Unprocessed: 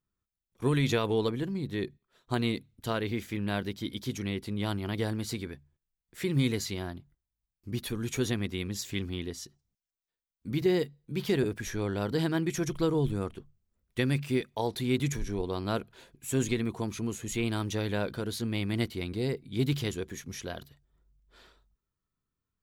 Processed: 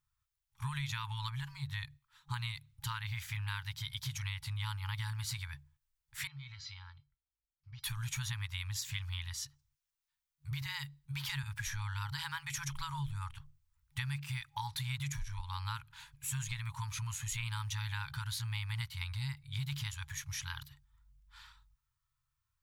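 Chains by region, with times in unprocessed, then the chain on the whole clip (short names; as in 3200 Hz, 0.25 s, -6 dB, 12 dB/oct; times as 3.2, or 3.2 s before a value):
6.27–7.84 steep low-pass 5600 Hz + compressor 10:1, threshold -29 dBFS + resonator 450 Hz, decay 0.2 s, harmonics odd, mix 80%
whole clip: FFT band-reject 140–820 Hz; compressor, threshold -38 dBFS; gain +2.5 dB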